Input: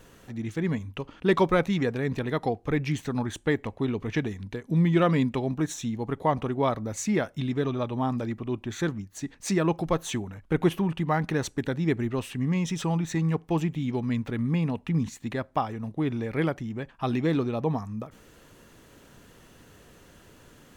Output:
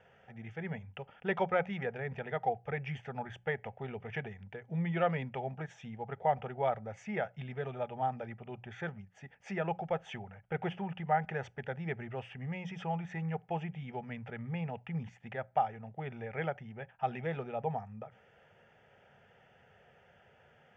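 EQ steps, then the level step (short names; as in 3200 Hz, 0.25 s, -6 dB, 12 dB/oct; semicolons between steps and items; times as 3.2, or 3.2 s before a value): speaker cabinet 110–4200 Hz, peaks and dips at 790 Hz +8 dB, 1200 Hz +7 dB, 3300 Hz +5 dB; notches 60/120/180 Hz; fixed phaser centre 1100 Hz, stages 6; -6.0 dB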